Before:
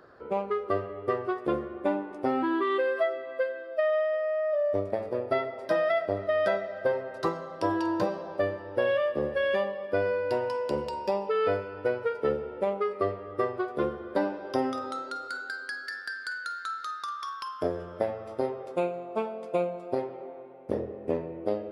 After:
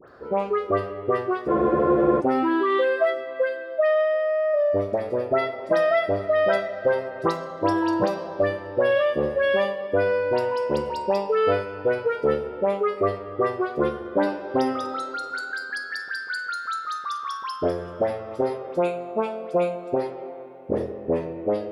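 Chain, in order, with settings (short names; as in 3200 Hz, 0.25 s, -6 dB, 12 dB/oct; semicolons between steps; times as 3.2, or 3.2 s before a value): dispersion highs, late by 83 ms, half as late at 1900 Hz; spectral freeze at 1.51, 0.68 s; gain +5.5 dB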